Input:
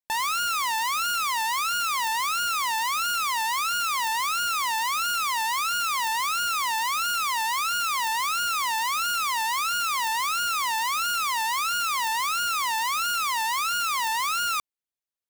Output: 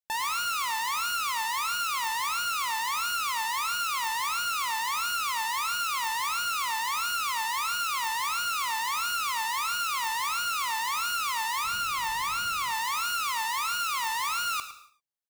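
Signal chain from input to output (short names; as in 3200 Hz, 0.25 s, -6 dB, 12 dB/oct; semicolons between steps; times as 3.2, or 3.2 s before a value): 11.64–12.72 tone controls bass +11 dB, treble -2 dB; on a send: echo 0.108 s -13 dB; on the sum: non-linear reverb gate 0.31 s falling, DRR 10 dB; gain -4 dB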